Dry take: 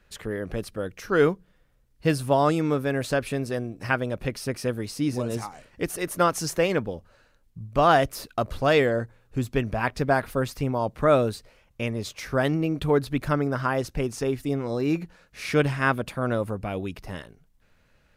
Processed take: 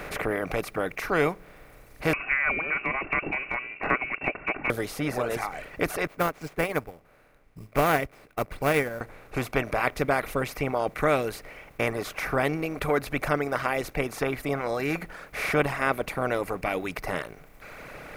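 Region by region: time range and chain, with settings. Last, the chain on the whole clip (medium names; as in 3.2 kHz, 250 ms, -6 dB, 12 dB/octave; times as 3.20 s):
2.13–4.70 s: comb 2.5 ms + frequency inversion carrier 2.7 kHz + dynamic bell 710 Hz, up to -7 dB, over -51 dBFS, Q 4.3
6.07–9.01 s: tone controls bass +7 dB, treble -5 dB + sample-rate reducer 13 kHz + upward expansion 2.5:1, over -34 dBFS
whole clip: spectral levelling over time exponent 0.4; reverb removal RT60 2 s; trim -7 dB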